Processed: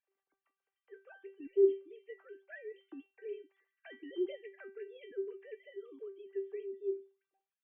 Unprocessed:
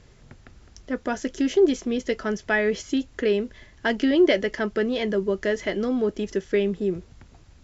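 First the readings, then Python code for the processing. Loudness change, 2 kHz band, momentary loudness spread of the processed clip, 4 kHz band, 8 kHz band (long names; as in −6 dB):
−14.0 dB, −26.0 dB, 22 LU, −28.0 dB, can't be measured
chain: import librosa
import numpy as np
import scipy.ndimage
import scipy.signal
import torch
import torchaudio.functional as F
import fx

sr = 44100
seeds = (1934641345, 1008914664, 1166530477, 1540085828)

p1 = fx.sine_speech(x, sr)
p2 = fx.dynamic_eq(p1, sr, hz=240.0, q=1.6, threshold_db=-30.0, ratio=4.0, max_db=-4)
p3 = fx.level_steps(p2, sr, step_db=9)
p4 = p2 + (p3 * 10.0 ** (0.5 / 20.0))
p5 = fx.comb_fb(p4, sr, f0_hz=390.0, decay_s=0.31, harmonics='all', damping=0.0, mix_pct=90)
y = p5 * 10.0 ** (-8.5 / 20.0)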